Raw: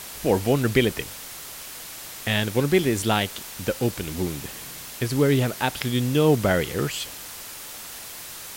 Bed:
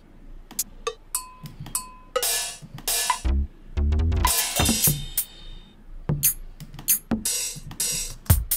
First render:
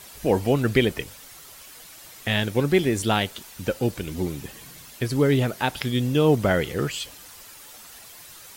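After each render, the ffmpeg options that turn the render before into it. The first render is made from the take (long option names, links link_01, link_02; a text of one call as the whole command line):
ffmpeg -i in.wav -af "afftdn=noise_reduction=9:noise_floor=-39" out.wav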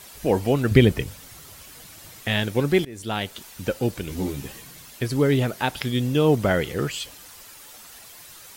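ffmpeg -i in.wav -filter_complex "[0:a]asettb=1/sr,asplit=3[link_01][link_02][link_03];[link_01]atrim=end=0.714[link_04];[link_02]atrim=start=0.71:end=2.2,asetpts=PTS-STARTPTS,afade=type=in:duration=0.004:curve=qsin,afade=type=out:start_time=1.486:duration=0.004:curve=qsin,equalizer=frequency=91:width=0.4:gain=11[link_05];[link_03]atrim=start=2.196[link_06];[link_04][link_05]acrossfade=duration=0.004:curve1=hsin:curve2=qsin[link_07];[link_07][link_06]acrossfade=duration=0.004:curve1=qsin:curve2=hsin,asettb=1/sr,asplit=3[link_08][link_09][link_10];[link_08]atrim=end=4.084[link_11];[link_09]atrim=start=4.08:end=4.61,asetpts=PTS-STARTPTS,afade=type=in:duration=0.004:curve=qsin,afade=type=out:start_time=0.526:duration=0.004:curve=qsin,asplit=2[link_12][link_13];[link_13]adelay=15,volume=-3dB[link_14];[link_12][link_14]amix=inputs=2:normalize=0,atrim=end_sample=23373[link_15];[link_10]atrim=start=4.606[link_16];[link_11][link_15]acrossfade=duration=0.004:curve1=hsin:curve2=qsin[link_17];[link_17][link_16]acrossfade=duration=0.004:curve1=qsin:curve2=hsin,asplit=2[link_18][link_19];[link_18]atrim=end=2.85,asetpts=PTS-STARTPTS,afade=type=out:start_time=2.846:duration=0.004:curve=hsin:silence=0.0707946[link_20];[link_19]atrim=start=2.85,asetpts=PTS-STARTPTS,afade=type=in:duration=0.58:silence=0.0707946[link_21];[link_20][link_21]concat=n=2:v=0:a=1" out.wav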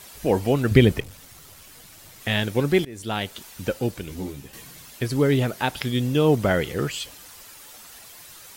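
ffmpeg -i in.wav -filter_complex "[0:a]asettb=1/sr,asplit=3[link_01][link_02][link_03];[link_01]atrim=end=1.004[link_04];[link_02]atrim=start=1:end=2.21,asetpts=PTS-STARTPTS,afade=type=in:duration=0.004:curve=qsin,afade=type=out:start_time=1.206:duration=0.004:curve=qsin,aeval=exprs='(tanh(79.4*val(0)+0.5)-tanh(0.5))/79.4':channel_layout=same[link_05];[link_03]atrim=start=2.206[link_06];[link_04][link_05]acrossfade=duration=0.004:curve1=hsin:curve2=qsin[link_07];[link_07][link_06]acrossfade=duration=0.004:curve1=qsin:curve2=hsin,asplit=2[link_08][link_09];[link_08]atrim=end=4.53,asetpts=PTS-STARTPTS,afade=type=out:start_time=3.65:duration=0.88:silence=0.375837[link_10];[link_09]atrim=start=4.53,asetpts=PTS-STARTPTS,afade=type=in:duration=0.004:curve=hsin:silence=0.375837[link_11];[link_10][link_11]concat=n=2:v=0:a=1" out.wav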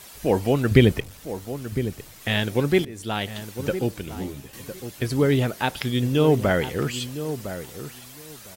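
ffmpeg -i in.wav -filter_complex "[0:a]asplit=2[link_01][link_02];[link_02]adelay=1007,lowpass=frequency=1200:poles=1,volume=-10.5dB,asplit=2[link_03][link_04];[link_04]adelay=1007,lowpass=frequency=1200:poles=1,volume=0.17[link_05];[link_01][link_03][link_05]amix=inputs=3:normalize=0" out.wav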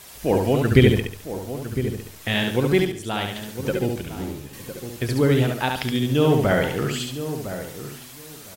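ffmpeg -i in.wav -af "aecho=1:1:70|140|210|280:0.631|0.215|0.0729|0.0248" out.wav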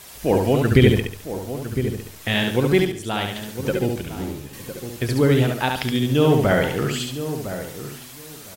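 ffmpeg -i in.wav -af "volume=1.5dB,alimiter=limit=-3dB:level=0:latency=1" out.wav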